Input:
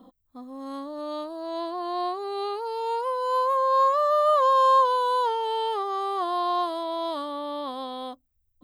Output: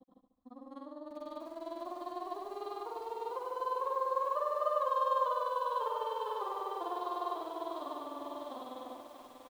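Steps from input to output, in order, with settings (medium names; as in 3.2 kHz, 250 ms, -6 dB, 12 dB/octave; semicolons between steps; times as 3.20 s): treble shelf 2.9 kHz -9.5 dB; tempo 0.91×; granulator 46 ms, grains 20 per s, pitch spread up and down by 0 st; on a send: feedback delay 72 ms, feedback 54%, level -7 dB; on the sum: bit-crushed delay 642 ms, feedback 55%, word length 8-bit, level -8 dB; trim -7.5 dB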